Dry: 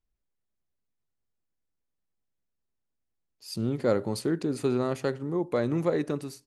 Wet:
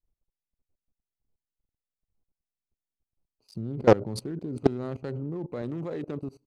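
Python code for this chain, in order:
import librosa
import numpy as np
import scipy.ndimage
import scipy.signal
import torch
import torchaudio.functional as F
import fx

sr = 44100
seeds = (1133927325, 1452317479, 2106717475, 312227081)

y = fx.wiener(x, sr, points=25)
y = fx.low_shelf(y, sr, hz=240.0, db=9.0, at=(3.56, 5.62))
y = fx.level_steps(y, sr, step_db=20)
y = fx.doppler_dist(y, sr, depth_ms=0.39)
y = F.gain(torch.from_numpy(y), 7.0).numpy()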